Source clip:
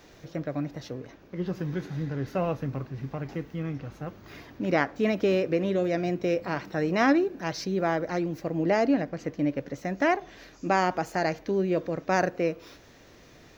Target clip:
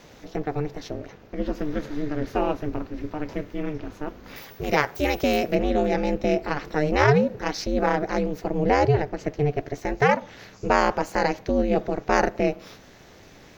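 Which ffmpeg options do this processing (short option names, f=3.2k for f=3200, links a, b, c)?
-filter_complex "[0:a]asettb=1/sr,asplit=3[a][b][c];[a]atrim=end=4.364[d];[b]atrim=start=4.36:end=5.55,asetpts=PTS-STARTPTS,afade=t=in:d=0.004:c=qsin,afade=t=out:st=1.186:d=0.004:c=qsin,aemphasis=mode=production:type=bsi[e];[c]atrim=start=5.546[f];[d][e]acrossfade=d=0.004:c1=hsin:c2=qsin[g];[g][f]acrossfade=d=0.004:c1=qsin:c2=hsin,aeval=exprs='val(0)*sin(2*PI*150*n/s)':c=same,volume=7dB"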